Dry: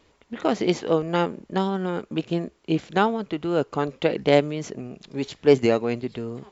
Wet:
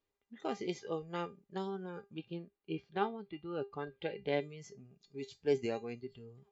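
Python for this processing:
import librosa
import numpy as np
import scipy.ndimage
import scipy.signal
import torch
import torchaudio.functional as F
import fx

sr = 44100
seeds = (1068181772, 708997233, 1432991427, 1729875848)

y = fx.noise_reduce_blind(x, sr, reduce_db=13)
y = fx.lowpass(y, sr, hz=4100.0, slope=24, at=(2.17, 4.41))
y = fx.comb_fb(y, sr, f0_hz=400.0, decay_s=0.19, harmonics='all', damping=0.0, mix_pct=80)
y = y * librosa.db_to_amplitude(-4.5)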